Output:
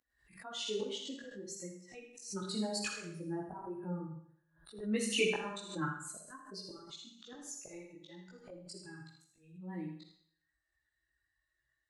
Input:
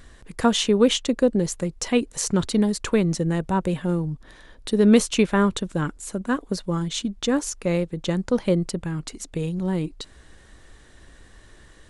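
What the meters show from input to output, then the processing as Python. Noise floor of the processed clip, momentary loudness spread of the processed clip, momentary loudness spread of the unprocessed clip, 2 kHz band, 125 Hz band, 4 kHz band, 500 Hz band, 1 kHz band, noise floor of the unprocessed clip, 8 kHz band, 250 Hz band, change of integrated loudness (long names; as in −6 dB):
−85 dBFS, 18 LU, 13 LU, −10.5 dB, −20.5 dB, −12.5 dB, −18.0 dB, −16.5 dB, −50 dBFS, −14.0 dB, −20.5 dB, −16.5 dB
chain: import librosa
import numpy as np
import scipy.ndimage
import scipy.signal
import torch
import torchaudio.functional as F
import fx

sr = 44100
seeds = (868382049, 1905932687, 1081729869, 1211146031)

y = fx.bin_expand(x, sr, power=2.0)
y = fx.weighting(y, sr, curve='A')
y = fx.spec_box(y, sr, start_s=3.08, length_s=1.61, low_hz=1700.0, high_hz=9100.0, gain_db=-22)
y = fx.peak_eq(y, sr, hz=300.0, db=3.5, octaves=0.61)
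y = fx.rider(y, sr, range_db=4, speed_s=2.0)
y = fx.auto_swell(y, sr, attack_ms=619.0)
y = fx.chorus_voices(y, sr, voices=6, hz=0.4, base_ms=19, depth_ms=4.5, mix_pct=55)
y = y + 10.0 ** (-7.5 / 20.0) * np.pad(y, (int(81 * sr / 1000.0), 0))[:len(y)]
y = fx.rev_schroeder(y, sr, rt60_s=0.6, comb_ms=38, drr_db=4.0)
y = fx.pre_swell(y, sr, db_per_s=110.0)
y = F.gain(torch.from_numpy(y), 1.0).numpy()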